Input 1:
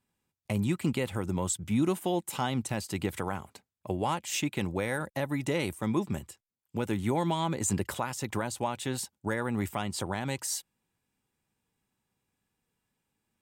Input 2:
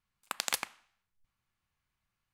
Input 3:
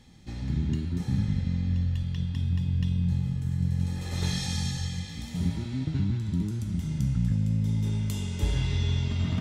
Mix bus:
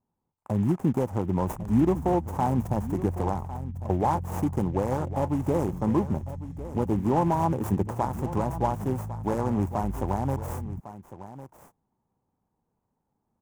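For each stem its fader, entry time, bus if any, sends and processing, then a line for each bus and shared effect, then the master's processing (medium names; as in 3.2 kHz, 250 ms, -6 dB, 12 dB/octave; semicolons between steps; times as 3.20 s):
+0.5 dB, 0.00 s, no send, echo send -14 dB, delay time shaken by noise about 2.6 kHz, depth 0.13 ms
-10.0 dB, 0.15 s, no send, echo send -4 dB, auto duck -16 dB, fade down 1.40 s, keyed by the first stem
-7.5 dB, 1.40 s, no send, no echo send, amplifier tone stack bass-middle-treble 10-0-1; level flattener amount 70%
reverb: none
echo: delay 1103 ms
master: FFT filter 580 Hz 0 dB, 900 Hz +5 dB, 1.4 kHz -9 dB, 4.2 kHz -29 dB, 6.4 kHz -16 dB; level rider gain up to 4.5 dB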